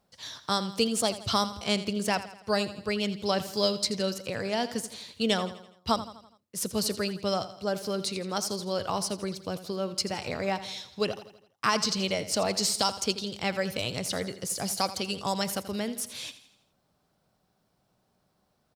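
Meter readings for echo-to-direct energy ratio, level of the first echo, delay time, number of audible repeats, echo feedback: −12.5 dB, −14.0 dB, 83 ms, 4, 50%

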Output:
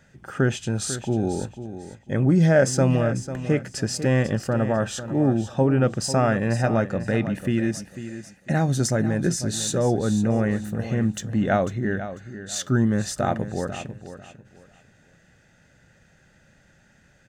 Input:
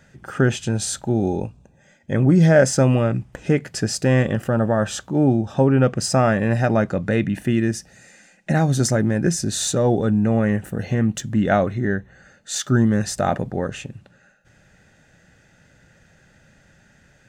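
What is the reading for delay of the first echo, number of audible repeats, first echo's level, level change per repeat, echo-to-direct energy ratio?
496 ms, 2, −12.0 dB, −12.5 dB, −11.5 dB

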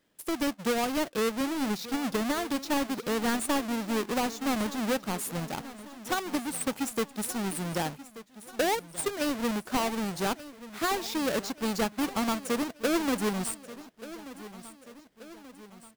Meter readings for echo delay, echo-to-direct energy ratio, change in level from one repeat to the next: 1,183 ms, −14.5 dB, −5.5 dB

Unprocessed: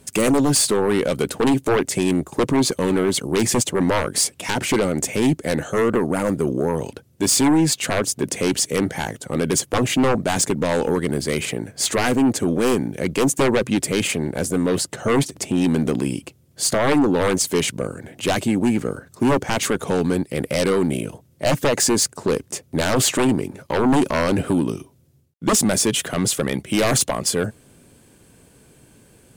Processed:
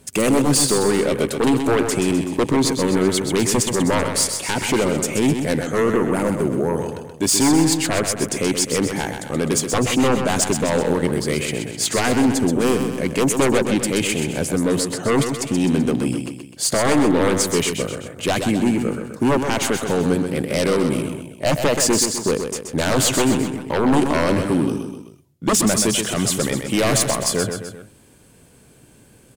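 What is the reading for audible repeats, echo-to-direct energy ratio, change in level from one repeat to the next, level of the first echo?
3, −5.5 dB, −5.5 dB, −7.0 dB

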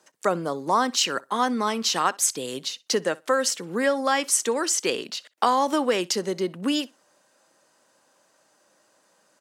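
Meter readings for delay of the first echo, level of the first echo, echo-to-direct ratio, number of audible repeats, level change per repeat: 62 ms, −23.5 dB, −23.5 dB, 1, repeats not evenly spaced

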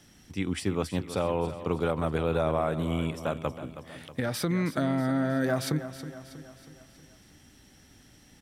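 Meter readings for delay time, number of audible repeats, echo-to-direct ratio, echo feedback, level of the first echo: 320 ms, 4, −11.0 dB, 52%, −12.5 dB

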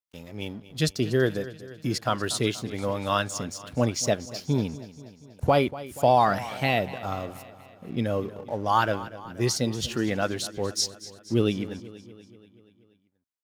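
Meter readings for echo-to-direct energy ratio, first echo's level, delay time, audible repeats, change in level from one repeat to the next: −14.5 dB, −16.5 dB, 240 ms, 5, −4.5 dB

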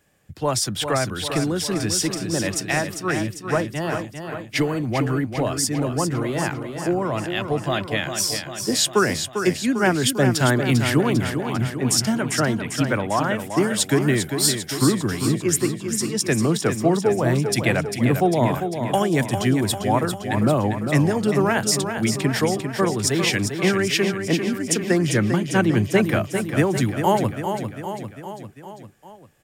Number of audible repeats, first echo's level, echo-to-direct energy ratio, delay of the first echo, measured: 5, −7.5 dB, −5.5 dB, 398 ms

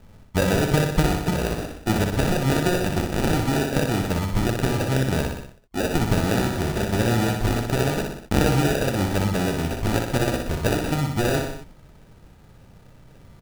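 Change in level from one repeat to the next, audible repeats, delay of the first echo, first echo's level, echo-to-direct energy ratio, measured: −4.5 dB, 4, 61 ms, −5.0 dB, −3.0 dB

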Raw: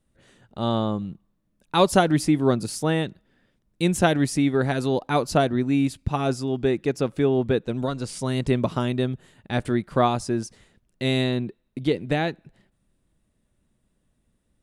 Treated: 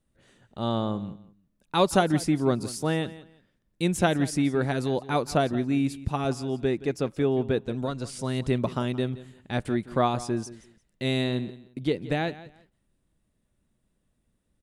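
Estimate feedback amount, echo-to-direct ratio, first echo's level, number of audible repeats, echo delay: 22%, −17.0 dB, −17.0 dB, 2, 173 ms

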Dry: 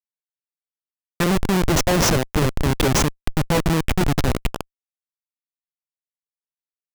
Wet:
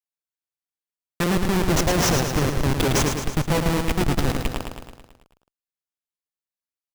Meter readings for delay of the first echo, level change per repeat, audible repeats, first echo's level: 109 ms, −4.5 dB, 7, −6.0 dB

